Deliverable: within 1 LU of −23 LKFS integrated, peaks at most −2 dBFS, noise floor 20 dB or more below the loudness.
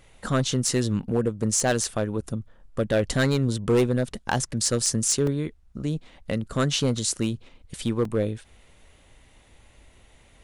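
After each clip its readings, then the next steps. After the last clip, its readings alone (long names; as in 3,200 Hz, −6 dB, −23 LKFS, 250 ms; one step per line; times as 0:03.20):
share of clipped samples 0.9%; peaks flattened at −15.0 dBFS; number of dropouts 2; longest dropout 2.9 ms; integrated loudness −25.5 LKFS; sample peak −15.0 dBFS; target loudness −23.0 LKFS
→ clipped peaks rebuilt −15 dBFS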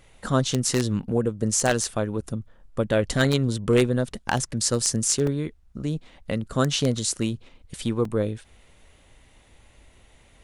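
share of clipped samples 0.0%; number of dropouts 2; longest dropout 2.9 ms
→ repair the gap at 0:05.27/0:08.05, 2.9 ms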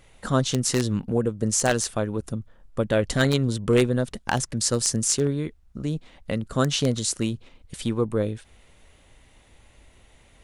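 number of dropouts 0; integrated loudness −25.0 LKFS; sample peak −6.0 dBFS; target loudness −23.0 LKFS
→ level +2 dB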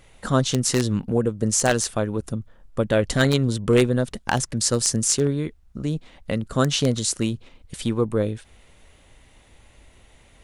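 integrated loudness −23.0 LKFS; sample peak −4.0 dBFS; background noise floor −54 dBFS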